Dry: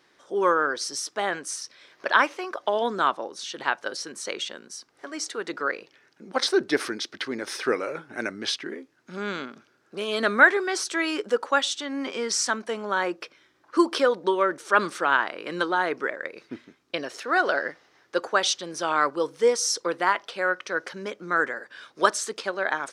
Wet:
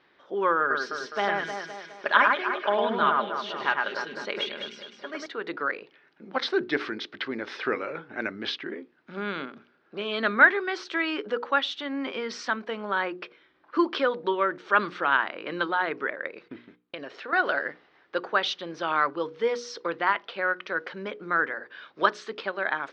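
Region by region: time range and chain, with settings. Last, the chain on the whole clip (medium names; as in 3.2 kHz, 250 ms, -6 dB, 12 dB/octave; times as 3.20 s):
0.60–5.26 s: comb 4.9 ms, depth 47% + echo whose repeats swap between lows and highs 103 ms, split 2.4 kHz, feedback 67%, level -2.5 dB
16.48–17.33 s: gate -59 dBFS, range -14 dB + compression 3:1, threshold -34 dBFS
whole clip: low-pass 3.7 kHz 24 dB/octave; hum notches 60/120/180/240/300/360/420/480 Hz; dynamic bell 520 Hz, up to -4 dB, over -31 dBFS, Q 0.73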